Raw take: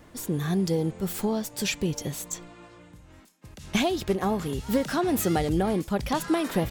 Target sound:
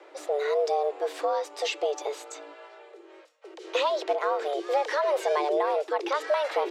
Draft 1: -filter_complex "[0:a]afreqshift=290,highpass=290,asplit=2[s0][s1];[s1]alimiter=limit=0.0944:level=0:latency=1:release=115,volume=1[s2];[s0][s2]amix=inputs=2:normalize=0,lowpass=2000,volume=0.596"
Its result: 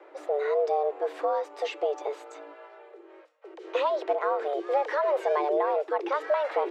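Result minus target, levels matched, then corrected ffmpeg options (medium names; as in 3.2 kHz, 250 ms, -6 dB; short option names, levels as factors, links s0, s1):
4 kHz band -8.0 dB
-filter_complex "[0:a]afreqshift=290,highpass=290,asplit=2[s0][s1];[s1]alimiter=limit=0.0944:level=0:latency=1:release=115,volume=1[s2];[s0][s2]amix=inputs=2:normalize=0,lowpass=4300,volume=0.596"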